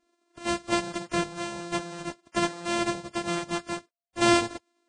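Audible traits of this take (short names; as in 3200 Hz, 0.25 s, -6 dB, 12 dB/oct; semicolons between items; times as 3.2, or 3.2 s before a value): a buzz of ramps at a fixed pitch in blocks of 128 samples; Vorbis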